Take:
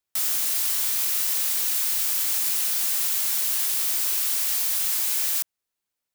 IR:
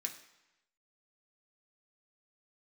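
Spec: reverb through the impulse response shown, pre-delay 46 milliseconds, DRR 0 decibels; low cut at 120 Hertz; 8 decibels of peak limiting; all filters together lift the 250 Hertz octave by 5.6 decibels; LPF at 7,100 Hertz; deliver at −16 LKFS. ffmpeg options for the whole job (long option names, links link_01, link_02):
-filter_complex "[0:a]highpass=120,lowpass=7100,equalizer=frequency=250:width_type=o:gain=7.5,alimiter=level_in=3.5dB:limit=-24dB:level=0:latency=1,volume=-3.5dB,asplit=2[link_01][link_02];[1:a]atrim=start_sample=2205,adelay=46[link_03];[link_02][link_03]afir=irnorm=-1:irlink=0,volume=1dB[link_04];[link_01][link_04]amix=inputs=2:normalize=0,volume=14.5dB"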